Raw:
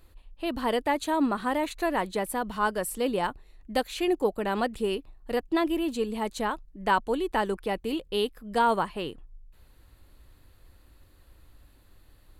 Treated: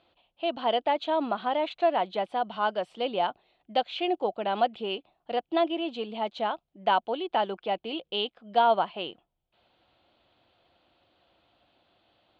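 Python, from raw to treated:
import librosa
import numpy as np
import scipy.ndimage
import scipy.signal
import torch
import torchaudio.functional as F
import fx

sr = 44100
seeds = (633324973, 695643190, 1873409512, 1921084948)

y = fx.cabinet(x, sr, low_hz=260.0, low_slope=12, high_hz=3800.0, hz=(270.0, 430.0, 700.0, 1100.0, 1800.0, 3200.0), db=(-6, -6, 9, -4, -9, 7))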